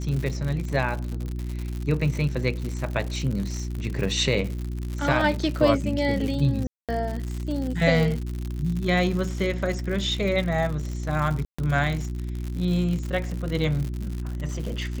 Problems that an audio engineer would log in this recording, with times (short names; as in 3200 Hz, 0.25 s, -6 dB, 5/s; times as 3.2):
crackle 110/s -29 dBFS
hum 60 Hz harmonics 6 -30 dBFS
6.67–6.89 gap 0.217 s
11.45–11.59 gap 0.135 s